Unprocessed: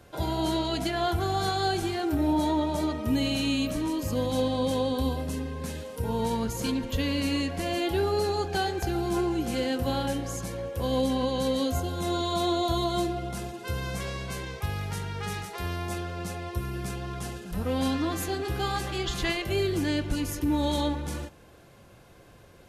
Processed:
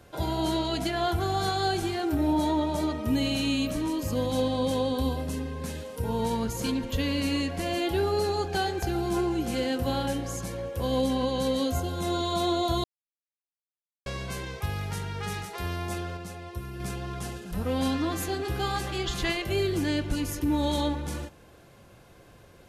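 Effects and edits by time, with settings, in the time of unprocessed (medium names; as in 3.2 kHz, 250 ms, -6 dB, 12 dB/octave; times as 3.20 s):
12.84–14.06 s: mute
16.17–16.80 s: gain -5 dB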